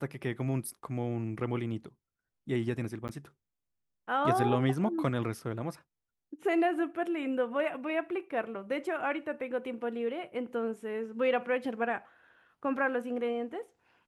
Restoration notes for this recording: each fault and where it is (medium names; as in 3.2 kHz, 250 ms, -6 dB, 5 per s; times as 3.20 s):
3.08–3.09 s: dropout 9.7 ms